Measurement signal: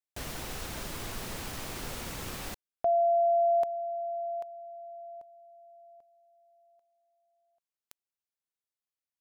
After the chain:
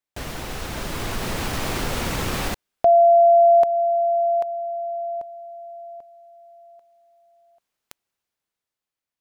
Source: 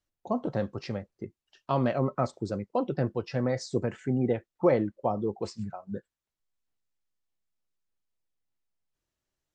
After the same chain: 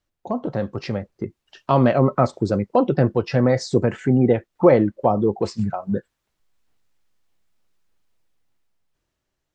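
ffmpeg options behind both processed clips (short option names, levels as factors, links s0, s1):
-filter_complex "[0:a]dynaudnorm=f=220:g=11:m=2.82,highshelf=f=4900:g=-7,asplit=2[s0][s1];[s1]acompressor=threshold=0.0447:ratio=6:attack=0.43:release=228:knee=1:detection=rms,volume=1.41[s2];[s0][s2]amix=inputs=2:normalize=0"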